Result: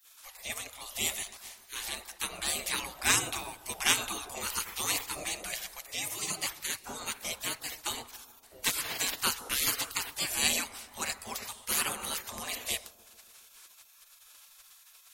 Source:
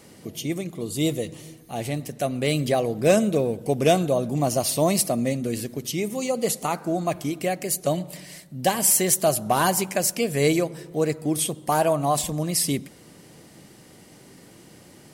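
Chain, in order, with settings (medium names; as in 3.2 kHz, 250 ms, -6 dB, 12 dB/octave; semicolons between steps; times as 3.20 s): spectral gate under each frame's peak -25 dB weak; bucket-brigade echo 141 ms, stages 1024, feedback 65%, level -18 dB; trim +6 dB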